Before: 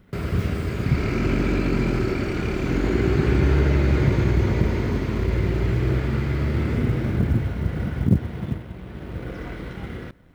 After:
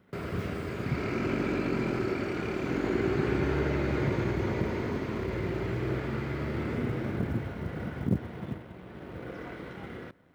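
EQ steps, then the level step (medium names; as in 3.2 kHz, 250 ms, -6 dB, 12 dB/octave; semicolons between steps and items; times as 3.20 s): high-pass 76 Hz; bass shelf 240 Hz -11 dB; treble shelf 2 kHz -7.5 dB; -1.5 dB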